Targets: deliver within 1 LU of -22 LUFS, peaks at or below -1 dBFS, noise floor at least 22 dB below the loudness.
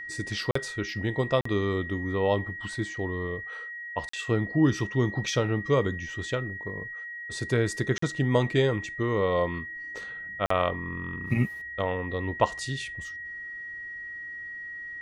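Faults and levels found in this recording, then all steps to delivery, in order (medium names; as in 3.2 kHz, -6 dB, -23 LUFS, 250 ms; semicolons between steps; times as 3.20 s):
dropouts 5; longest dropout 44 ms; steady tone 1.9 kHz; tone level -36 dBFS; loudness -29.0 LUFS; peak level -6.0 dBFS; loudness target -22.0 LUFS
-> interpolate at 0.51/1.41/4.09/7.98/10.46 s, 44 ms; band-stop 1.9 kHz, Q 30; trim +7 dB; peak limiter -1 dBFS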